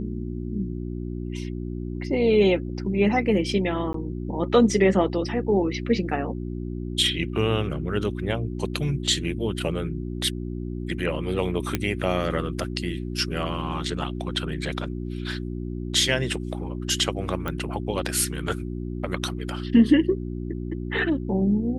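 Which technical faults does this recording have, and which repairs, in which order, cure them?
mains hum 60 Hz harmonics 6 −31 dBFS
0:03.93–0:03.94: drop-out 13 ms
0:11.75: click −8 dBFS
0:17.48: click −16 dBFS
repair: click removal
hum removal 60 Hz, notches 6
repair the gap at 0:03.93, 13 ms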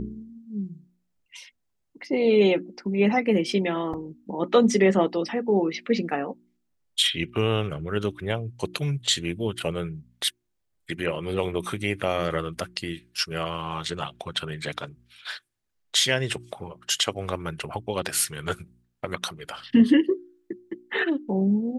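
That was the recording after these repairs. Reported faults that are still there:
none of them is left

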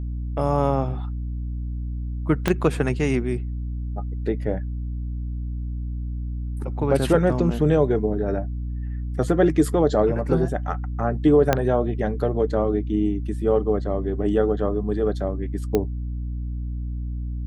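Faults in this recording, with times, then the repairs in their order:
mains hum 60 Hz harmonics 5 −28 dBFS
0:02.48: click −7 dBFS
0:11.53: click −4 dBFS
0:15.75: click −9 dBFS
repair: click removal
hum removal 60 Hz, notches 5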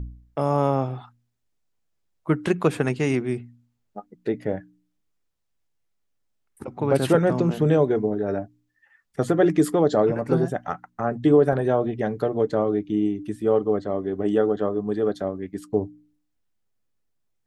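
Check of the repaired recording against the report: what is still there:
0:02.48: click
0:11.53: click

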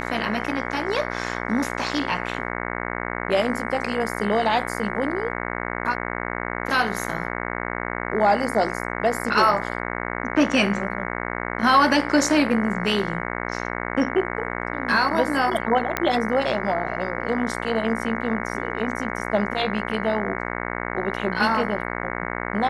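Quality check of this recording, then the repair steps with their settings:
mains buzz 60 Hz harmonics 37 −29 dBFS
0:15.97: click −7 dBFS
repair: click removal
hum removal 60 Hz, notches 37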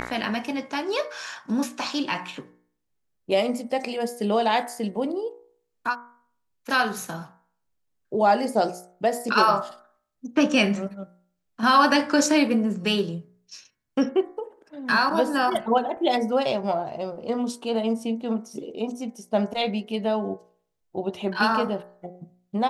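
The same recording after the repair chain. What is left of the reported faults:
none of them is left

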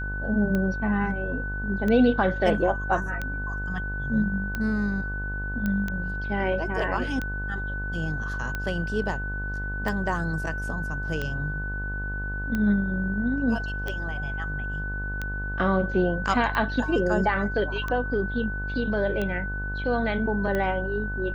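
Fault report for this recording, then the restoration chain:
mains buzz 50 Hz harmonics 23 −32 dBFS
scratch tick 45 rpm −16 dBFS
whistle 1,500 Hz −32 dBFS
0:05.66: click −16 dBFS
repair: click removal
hum removal 50 Hz, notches 23
notch filter 1,500 Hz, Q 30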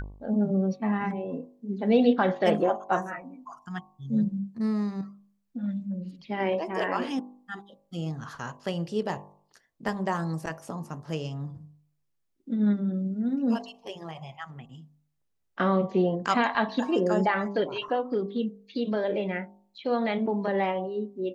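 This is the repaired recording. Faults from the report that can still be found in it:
none of them is left

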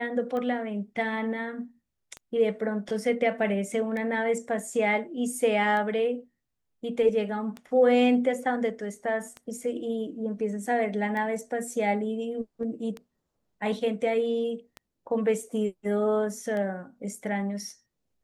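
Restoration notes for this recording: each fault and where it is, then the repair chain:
scratch tick 33 1/3 rpm −23 dBFS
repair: click removal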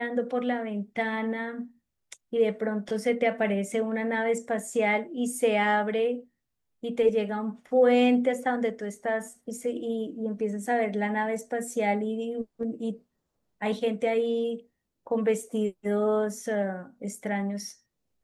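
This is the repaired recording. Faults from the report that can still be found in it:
none of them is left

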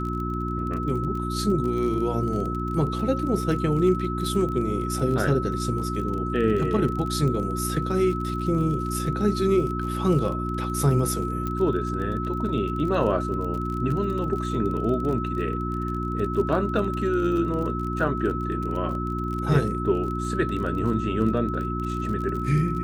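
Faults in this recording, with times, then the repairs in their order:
surface crackle 28 per second −31 dBFS
mains hum 60 Hz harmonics 6 −29 dBFS
whistle 1,300 Hz −31 dBFS
0:11.47: click −17 dBFS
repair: click removal
notch filter 1,300 Hz, Q 30
hum removal 60 Hz, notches 6

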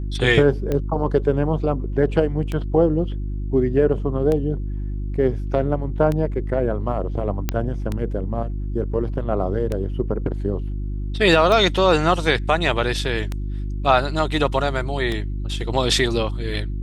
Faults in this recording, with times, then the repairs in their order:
mains hum 50 Hz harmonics 7 −26 dBFS
scratch tick 33 1/3 rpm −12 dBFS
0:07.49: click −7 dBFS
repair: click removal
hum removal 50 Hz, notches 7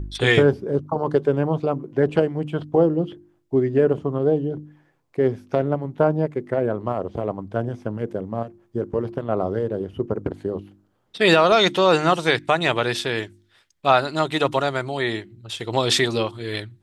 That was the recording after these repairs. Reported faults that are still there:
none of them is left

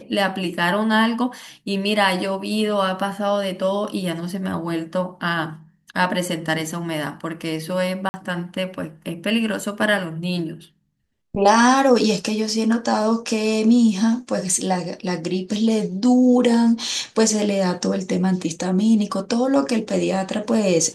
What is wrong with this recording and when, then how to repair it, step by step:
0:08.09–0:08.14: drop-out 50 ms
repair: repair the gap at 0:08.09, 50 ms

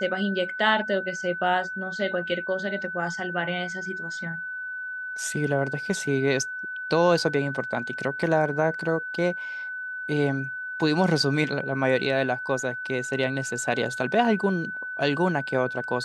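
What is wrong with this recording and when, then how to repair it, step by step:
whistle 1,500 Hz −31 dBFS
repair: notch filter 1,500 Hz, Q 30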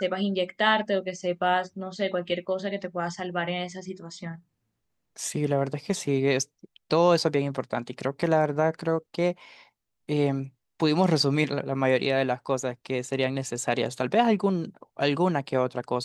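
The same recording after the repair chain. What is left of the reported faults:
none of them is left

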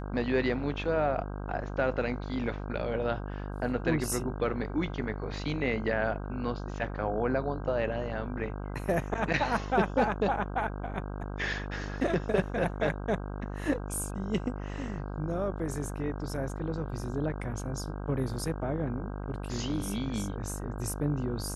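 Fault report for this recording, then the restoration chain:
mains buzz 50 Hz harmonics 32 −37 dBFS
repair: hum removal 50 Hz, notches 32

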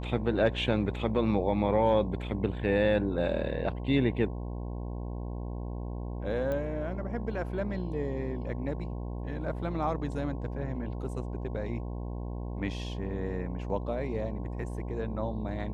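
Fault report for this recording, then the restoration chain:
mains buzz 60 Hz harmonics 18 −36 dBFS
0:06.52: click −22 dBFS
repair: click removal
hum removal 60 Hz, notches 18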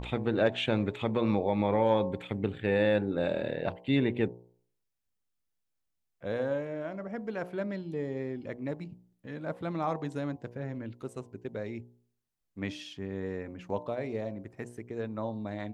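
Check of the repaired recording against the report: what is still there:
none of them is left

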